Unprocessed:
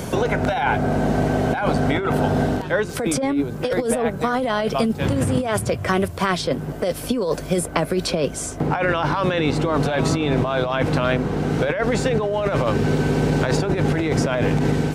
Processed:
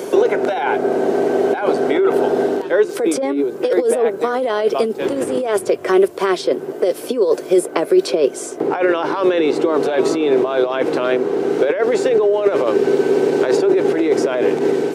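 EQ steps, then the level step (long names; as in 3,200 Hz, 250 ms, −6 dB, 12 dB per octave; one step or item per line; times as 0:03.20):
high-pass with resonance 380 Hz, resonance Q 4.5
−1.0 dB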